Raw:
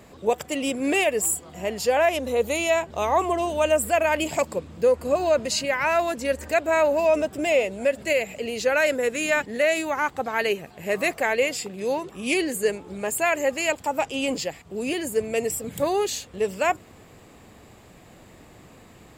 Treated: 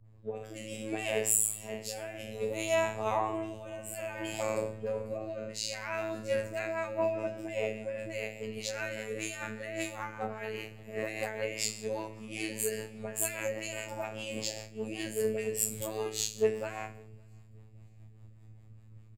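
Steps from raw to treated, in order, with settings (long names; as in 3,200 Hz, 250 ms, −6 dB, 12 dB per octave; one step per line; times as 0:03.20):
peak hold with a decay on every bin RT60 0.57 s
mains-hum notches 60/120/180/240/300/360/420/480 Hz
in parallel at −2 dB: downward compressor, threshold −32 dBFS, peak gain reduction 16.5 dB
on the sum: brickwall limiter −14.5 dBFS, peak gain reduction 7.5 dB
all-pass dispersion highs, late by 49 ms, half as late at 1,100 Hz
hum with harmonics 60 Hz, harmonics 20, −35 dBFS −8 dB per octave
rotating-speaker cabinet horn 0.6 Hz, later 5 Hz, at 0:05.72
phases set to zero 109 Hz
surface crackle 83 per second −50 dBFS
on a send: repeating echo 565 ms, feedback 58%, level −20 dB
on the sum: multiband upward and downward expander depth 100%
level −7.5 dB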